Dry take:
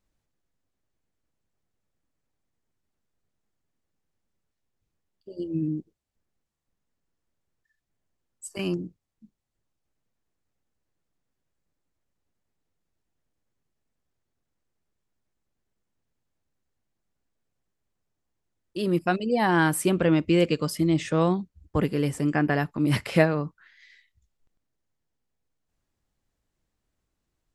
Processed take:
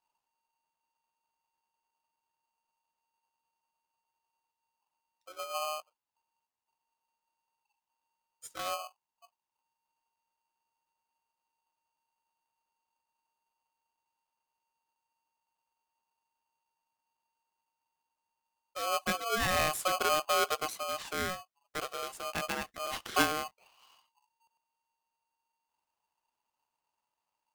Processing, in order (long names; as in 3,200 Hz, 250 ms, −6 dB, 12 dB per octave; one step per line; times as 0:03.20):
0:20.72–0:23.04: high-pass filter 500 Hz 6 dB per octave
ring modulator with a square carrier 920 Hz
level −8 dB